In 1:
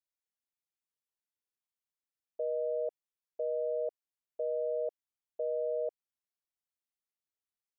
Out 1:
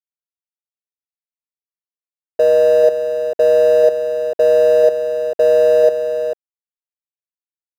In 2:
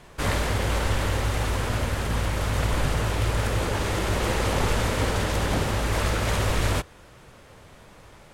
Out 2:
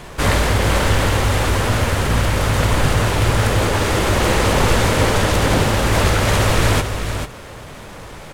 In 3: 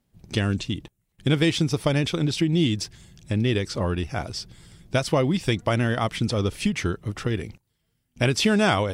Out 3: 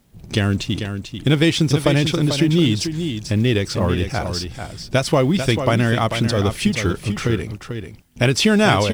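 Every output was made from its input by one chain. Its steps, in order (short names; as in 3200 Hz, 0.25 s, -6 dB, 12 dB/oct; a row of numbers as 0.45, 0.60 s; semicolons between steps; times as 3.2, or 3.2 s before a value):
G.711 law mismatch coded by mu; on a send: echo 0.442 s -8 dB; on the sum: normalise peaks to -3 dBFS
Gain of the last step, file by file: +20.0, +8.0, +4.5 dB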